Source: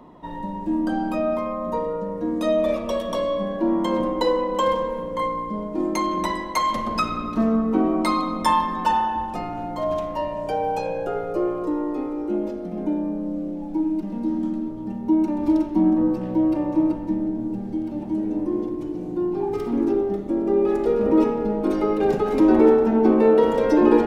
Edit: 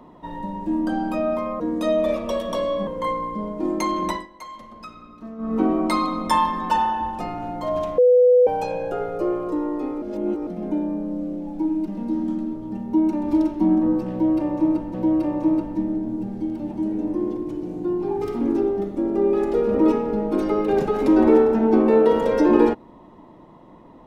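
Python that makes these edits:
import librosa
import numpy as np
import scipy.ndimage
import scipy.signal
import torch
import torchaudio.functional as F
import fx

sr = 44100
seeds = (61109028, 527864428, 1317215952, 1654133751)

y = fx.edit(x, sr, fx.cut(start_s=1.6, length_s=0.6),
    fx.cut(start_s=3.47, length_s=1.55),
    fx.fade_down_up(start_s=6.24, length_s=1.47, db=-16.5, fade_s=0.18),
    fx.bleep(start_s=10.13, length_s=0.49, hz=496.0, db=-10.5),
    fx.reverse_span(start_s=12.17, length_s=0.45),
    fx.repeat(start_s=16.26, length_s=0.83, count=2), tone=tone)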